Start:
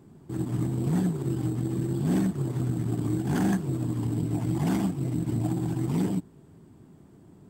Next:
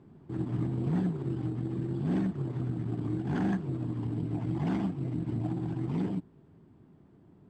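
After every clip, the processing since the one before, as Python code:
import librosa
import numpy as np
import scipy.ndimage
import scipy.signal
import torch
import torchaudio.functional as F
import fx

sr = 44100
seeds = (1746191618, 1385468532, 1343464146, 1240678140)

y = scipy.signal.sosfilt(scipy.signal.butter(2, 3300.0, 'lowpass', fs=sr, output='sos'), x)
y = fx.rider(y, sr, range_db=3, speed_s=2.0)
y = F.gain(torch.from_numpy(y), -4.5).numpy()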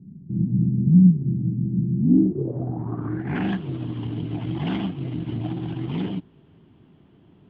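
y = fx.filter_sweep_lowpass(x, sr, from_hz=190.0, to_hz=3100.0, start_s=1.95, end_s=3.51, q=5.0)
y = F.gain(torch.from_numpy(y), 4.0).numpy()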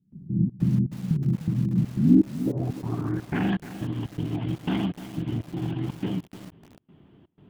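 y = fx.step_gate(x, sr, bpm=122, pattern='.xxx.xx..xx', floor_db=-24.0, edge_ms=4.5)
y = fx.echo_crushed(y, sr, ms=301, feedback_pct=35, bits=6, wet_db=-12.0)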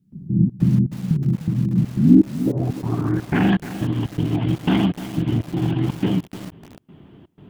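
y = fx.rider(x, sr, range_db=3, speed_s=2.0)
y = F.gain(torch.from_numpy(y), 5.5).numpy()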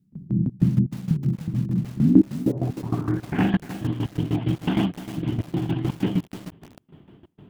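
y = fx.tremolo_shape(x, sr, shape='saw_down', hz=6.5, depth_pct=80)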